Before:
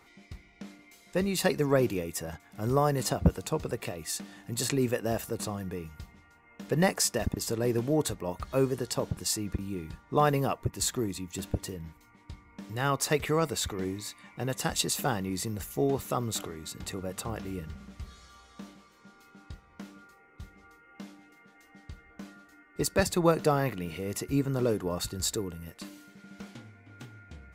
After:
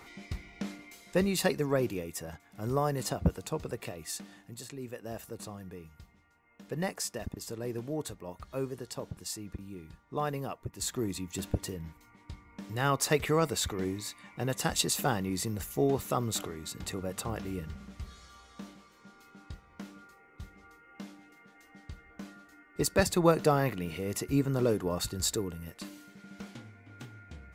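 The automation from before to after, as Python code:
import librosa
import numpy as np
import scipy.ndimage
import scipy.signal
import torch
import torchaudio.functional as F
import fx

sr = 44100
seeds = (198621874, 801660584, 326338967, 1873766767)

y = fx.gain(x, sr, db=fx.line((0.67, 7.0), (1.68, -4.0), (4.34, -4.0), (4.68, -16.0), (5.24, -8.5), (10.67, -8.5), (11.12, 0.0)))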